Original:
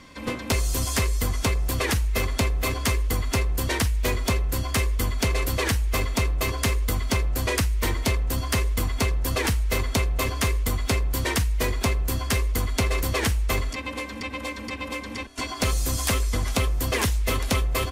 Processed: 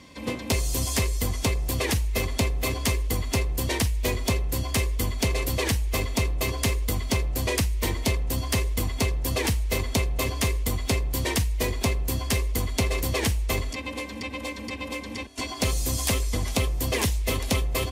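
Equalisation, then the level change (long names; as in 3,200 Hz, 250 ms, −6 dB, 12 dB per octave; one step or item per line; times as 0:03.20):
high-pass filter 50 Hz
parametric band 1,400 Hz −8.5 dB 0.67 octaves
0.0 dB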